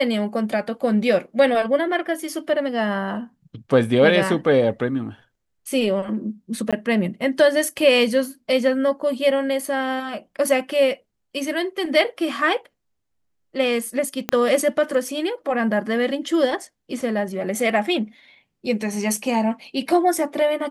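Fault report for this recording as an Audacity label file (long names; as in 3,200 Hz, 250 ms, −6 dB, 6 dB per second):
6.710000	6.730000	drop-out 16 ms
14.290000	14.290000	click −6 dBFS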